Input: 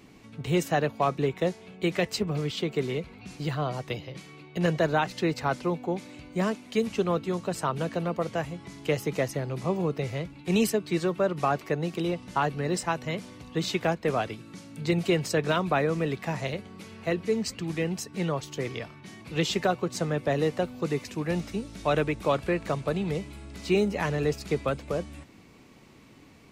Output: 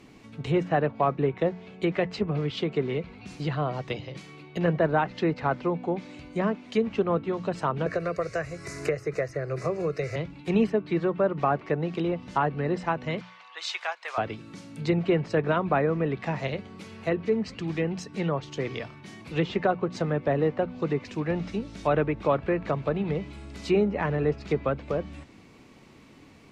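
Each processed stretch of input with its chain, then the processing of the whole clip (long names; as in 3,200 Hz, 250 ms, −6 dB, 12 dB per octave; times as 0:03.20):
0:07.86–0:10.16: high-shelf EQ 3,800 Hz +10 dB + phaser with its sweep stopped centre 880 Hz, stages 6 + multiband upward and downward compressor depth 100%
0:13.21–0:14.18: high-pass filter 860 Hz 24 dB per octave + low-pass that shuts in the quiet parts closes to 2,500 Hz, open at −31 dBFS + upward compression, threshold −44 dBFS
whole clip: high-shelf EQ 8,600 Hz −6.5 dB; mains-hum notches 60/120/180 Hz; treble cut that deepens with the level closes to 1,900 Hz, closed at −23.5 dBFS; level +1.5 dB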